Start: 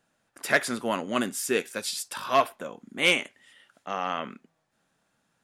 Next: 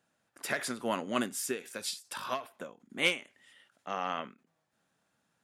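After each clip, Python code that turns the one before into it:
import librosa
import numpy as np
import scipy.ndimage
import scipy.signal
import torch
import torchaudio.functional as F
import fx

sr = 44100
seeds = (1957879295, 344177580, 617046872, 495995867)

y = scipy.signal.sosfilt(scipy.signal.butter(2, 47.0, 'highpass', fs=sr, output='sos'), x)
y = fx.end_taper(y, sr, db_per_s=180.0)
y = y * 10.0 ** (-4.0 / 20.0)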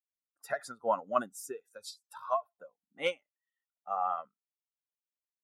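y = fx.bin_expand(x, sr, power=2.0)
y = fx.band_shelf(y, sr, hz=810.0, db=14.0, octaves=1.7)
y = y * 10.0 ** (-6.0 / 20.0)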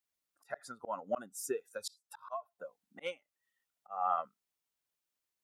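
y = fx.auto_swell(x, sr, attack_ms=448.0)
y = y * 10.0 ** (7.0 / 20.0)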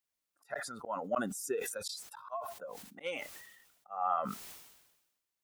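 y = fx.sustainer(x, sr, db_per_s=53.0)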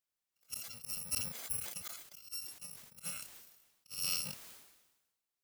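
y = fx.bit_reversed(x, sr, seeds[0], block=128)
y = y * 10.0 ** (-4.0 / 20.0)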